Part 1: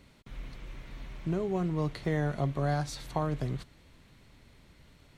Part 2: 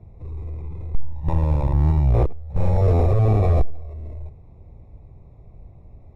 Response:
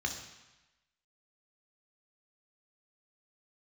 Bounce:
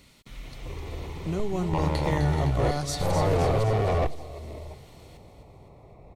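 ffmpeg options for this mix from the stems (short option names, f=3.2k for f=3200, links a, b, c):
-filter_complex "[0:a]volume=0.5dB,asplit=2[a][b];[b]volume=-8dB[c];[1:a]asplit=2[d][e];[e]highpass=f=720:p=1,volume=24dB,asoftclip=type=tanh:threshold=-9.5dB[f];[d][f]amix=inputs=2:normalize=0,lowpass=f=1.2k:p=1,volume=-6dB,adelay=450,volume=-7.5dB[g];[c]aecho=0:1:256|512|768|1024|1280|1536|1792|2048:1|0.53|0.281|0.149|0.0789|0.0418|0.0222|0.0117[h];[a][g][h]amix=inputs=3:normalize=0,highshelf=f=2.7k:g=10.5,bandreject=f=1.6k:w=9.6"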